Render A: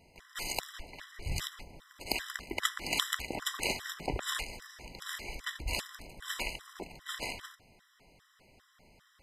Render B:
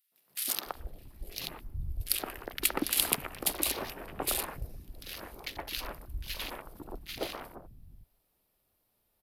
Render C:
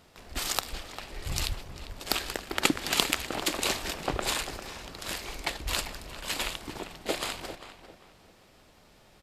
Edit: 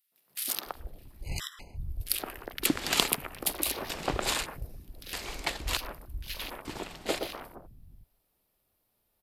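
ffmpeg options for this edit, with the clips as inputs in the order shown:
-filter_complex "[2:a]asplit=4[a][b][c][d];[1:a]asplit=6[e][f][g][h][i][j];[e]atrim=end=1.31[k];[0:a]atrim=start=1.21:end=1.8[l];[f]atrim=start=1.7:end=2.662[m];[a]atrim=start=2.658:end=3.082[n];[g]atrim=start=3.078:end=3.902[o];[b]atrim=start=3.898:end=4.462[p];[h]atrim=start=4.458:end=5.132[q];[c]atrim=start=5.128:end=5.772[r];[i]atrim=start=5.768:end=6.652[s];[d]atrim=start=6.648:end=7.192[t];[j]atrim=start=7.188[u];[k][l]acrossfade=d=0.1:c1=tri:c2=tri[v];[v][m]acrossfade=d=0.1:c1=tri:c2=tri[w];[w][n]acrossfade=d=0.004:c1=hsin:c2=hsin[x];[x][o]acrossfade=d=0.004:c1=hsin:c2=hsin[y];[y][p]acrossfade=d=0.004:c1=hsin:c2=hsin[z];[z][q]acrossfade=d=0.004:c1=hsin:c2=hsin[aa];[aa][r]acrossfade=d=0.004:c1=hsin:c2=hsin[ab];[ab][s]acrossfade=d=0.004:c1=hsin:c2=hsin[ac];[ac][t]acrossfade=d=0.004:c1=hsin:c2=hsin[ad];[ad][u]acrossfade=d=0.004:c1=hsin:c2=hsin"

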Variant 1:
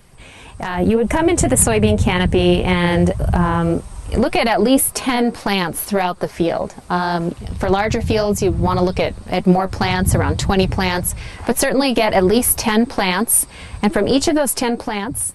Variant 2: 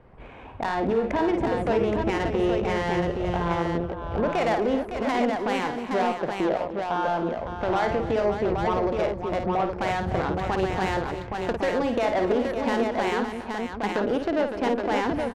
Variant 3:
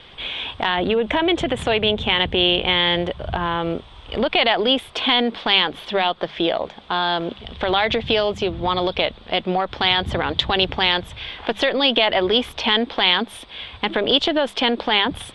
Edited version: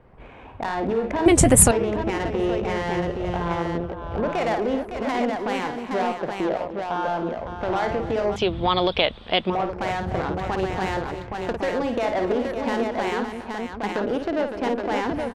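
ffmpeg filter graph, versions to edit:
-filter_complex "[1:a]asplit=3[a][b][c];[a]atrim=end=1.262[d];[0:a]atrim=start=1.258:end=1.712[e];[b]atrim=start=1.708:end=8.362[f];[2:a]atrim=start=8.358:end=9.502[g];[c]atrim=start=9.498[h];[d][e]acrossfade=d=0.004:c1=hsin:c2=hsin[i];[i][f]acrossfade=d=0.004:c1=hsin:c2=hsin[j];[j][g]acrossfade=d=0.004:c1=hsin:c2=hsin[k];[k][h]acrossfade=d=0.004:c1=hsin:c2=hsin"

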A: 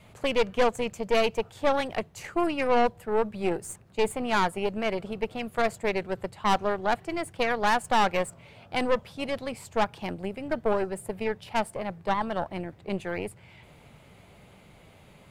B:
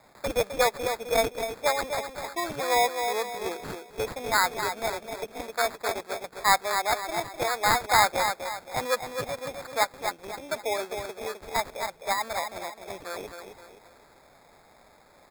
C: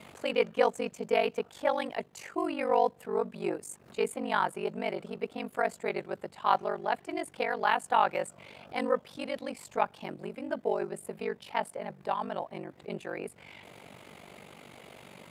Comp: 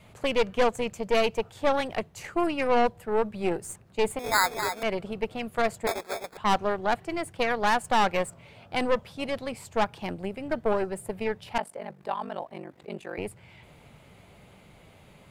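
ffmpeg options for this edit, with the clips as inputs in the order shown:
-filter_complex "[1:a]asplit=2[a][b];[0:a]asplit=4[c][d][e][f];[c]atrim=end=4.192[g];[a]atrim=start=4.188:end=4.832[h];[d]atrim=start=4.828:end=5.872[i];[b]atrim=start=5.868:end=6.372[j];[e]atrim=start=6.368:end=11.582[k];[2:a]atrim=start=11.578:end=13.182[l];[f]atrim=start=13.178[m];[g][h]acrossfade=d=0.004:c1=hsin:c2=hsin[n];[n][i]acrossfade=d=0.004:c1=hsin:c2=hsin[o];[o][j]acrossfade=d=0.004:c1=hsin:c2=hsin[p];[p][k]acrossfade=d=0.004:c1=hsin:c2=hsin[q];[q][l]acrossfade=d=0.004:c1=hsin:c2=hsin[r];[r][m]acrossfade=d=0.004:c1=hsin:c2=hsin"

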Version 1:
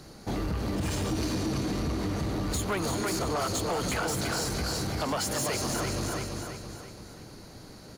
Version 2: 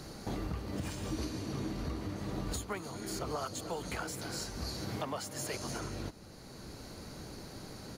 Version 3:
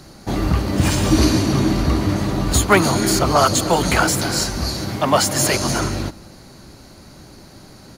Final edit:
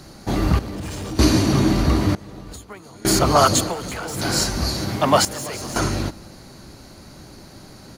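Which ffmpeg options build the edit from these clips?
-filter_complex "[0:a]asplit=3[a][b][c];[2:a]asplit=5[d][e][f][g][h];[d]atrim=end=0.592[i];[a]atrim=start=0.588:end=1.192[j];[e]atrim=start=1.188:end=2.152[k];[1:a]atrim=start=2.148:end=3.052[l];[f]atrim=start=3.048:end=3.75[m];[b]atrim=start=3.59:end=4.29[n];[g]atrim=start=4.13:end=5.252[o];[c]atrim=start=5.248:end=5.762[p];[h]atrim=start=5.758[q];[i][j]acrossfade=d=0.004:c1=hsin:c2=hsin[r];[r][k]acrossfade=d=0.004:c1=hsin:c2=hsin[s];[s][l]acrossfade=d=0.004:c1=hsin:c2=hsin[t];[t][m]acrossfade=d=0.004:c1=hsin:c2=hsin[u];[u][n]acrossfade=d=0.16:c1=tri:c2=tri[v];[v][o]acrossfade=d=0.16:c1=tri:c2=tri[w];[w][p]acrossfade=d=0.004:c1=hsin:c2=hsin[x];[x][q]acrossfade=d=0.004:c1=hsin:c2=hsin"

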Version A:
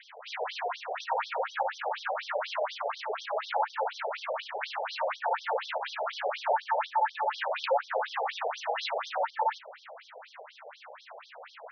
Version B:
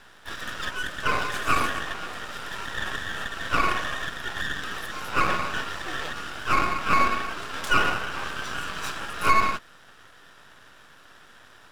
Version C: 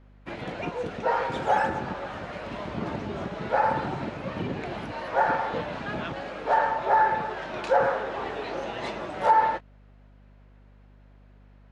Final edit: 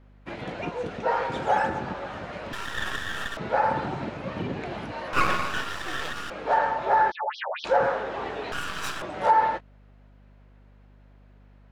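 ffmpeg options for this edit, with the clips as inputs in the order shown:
-filter_complex "[1:a]asplit=3[a][b][c];[2:a]asplit=5[d][e][f][g][h];[d]atrim=end=2.532[i];[a]atrim=start=2.528:end=3.372[j];[e]atrim=start=3.368:end=5.132[k];[b]atrim=start=5.128:end=6.302[l];[f]atrim=start=6.298:end=7.12[m];[0:a]atrim=start=7.1:end=7.66[n];[g]atrim=start=7.64:end=8.522[o];[c]atrim=start=8.518:end=9.022[p];[h]atrim=start=9.018[q];[i][j]acrossfade=d=0.004:c1=hsin:c2=hsin[r];[r][k]acrossfade=d=0.004:c1=hsin:c2=hsin[s];[s][l]acrossfade=d=0.004:c1=hsin:c2=hsin[t];[t][m]acrossfade=d=0.004:c1=hsin:c2=hsin[u];[u][n]acrossfade=d=0.02:c1=tri:c2=tri[v];[v][o]acrossfade=d=0.02:c1=tri:c2=tri[w];[w][p]acrossfade=d=0.004:c1=hsin:c2=hsin[x];[x][q]acrossfade=d=0.004:c1=hsin:c2=hsin"

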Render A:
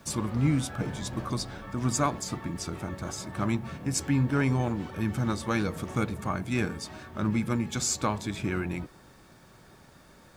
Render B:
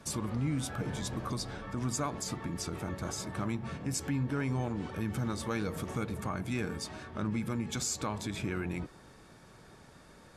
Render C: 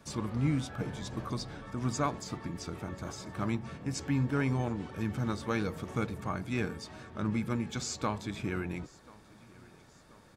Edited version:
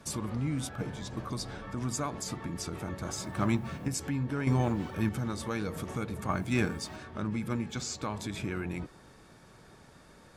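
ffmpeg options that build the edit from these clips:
-filter_complex "[2:a]asplit=2[a][b];[0:a]asplit=3[c][d][e];[1:a]asplit=6[f][g][h][i][j][k];[f]atrim=end=0.692[l];[a]atrim=start=0.688:end=1.322[m];[g]atrim=start=1.318:end=3.112[n];[c]atrim=start=3.108:end=3.882[o];[h]atrim=start=3.878:end=4.472[p];[d]atrim=start=4.468:end=5.092[q];[i]atrim=start=5.088:end=6.292[r];[e]atrim=start=6.288:end=6.962[s];[j]atrim=start=6.958:end=7.482[t];[b]atrim=start=7.478:end=8.032[u];[k]atrim=start=8.028[v];[l][m]acrossfade=d=0.004:c1=hsin:c2=hsin[w];[w][n]acrossfade=d=0.004:c1=hsin:c2=hsin[x];[x][o]acrossfade=d=0.004:c1=hsin:c2=hsin[y];[y][p]acrossfade=d=0.004:c1=hsin:c2=hsin[z];[z][q]acrossfade=d=0.004:c1=hsin:c2=hsin[aa];[aa][r]acrossfade=d=0.004:c1=hsin:c2=hsin[ab];[ab][s]acrossfade=d=0.004:c1=hsin:c2=hsin[ac];[ac][t]acrossfade=d=0.004:c1=hsin:c2=hsin[ad];[ad][u]acrossfade=d=0.004:c1=hsin:c2=hsin[ae];[ae][v]acrossfade=d=0.004:c1=hsin:c2=hsin"

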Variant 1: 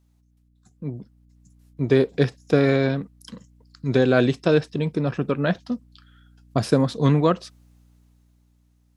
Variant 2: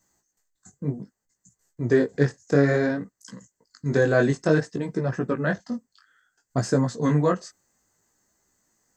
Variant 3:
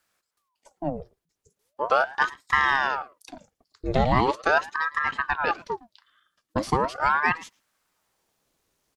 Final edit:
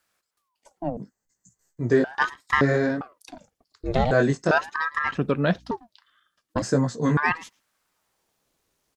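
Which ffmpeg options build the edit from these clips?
-filter_complex "[1:a]asplit=4[a][b][c][d];[2:a]asplit=6[e][f][g][h][i][j];[e]atrim=end=0.972[k];[a]atrim=start=0.968:end=2.042[l];[f]atrim=start=2.038:end=2.612[m];[b]atrim=start=2.608:end=3.012[n];[g]atrim=start=3.008:end=4.112[o];[c]atrim=start=4.108:end=4.512[p];[h]atrim=start=4.508:end=5.152[q];[0:a]atrim=start=5.148:end=5.712[r];[i]atrim=start=5.708:end=6.622[s];[d]atrim=start=6.618:end=7.172[t];[j]atrim=start=7.168[u];[k][l]acrossfade=d=0.004:c1=hsin:c2=hsin[v];[v][m]acrossfade=d=0.004:c1=hsin:c2=hsin[w];[w][n]acrossfade=d=0.004:c1=hsin:c2=hsin[x];[x][o]acrossfade=d=0.004:c1=hsin:c2=hsin[y];[y][p]acrossfade=d=0.004:c1=hsin:c2=hsin[z];[z][q]acrossfade=d=0.004:c1=hsin:c2=hsin[aa];[aa][r]acrossfade=d=0.004:c1=hsin:c2=hsin[ab];[ab][s]acrossfade=d=0.004:c1=hsin:c2=hsin[ac];[ac][t]acrossfade=d=0.004:c1=hsin:c2=hsin[ad];[ad][u]acrossfade=d=0.004:c1=hsin:c2=hsin"

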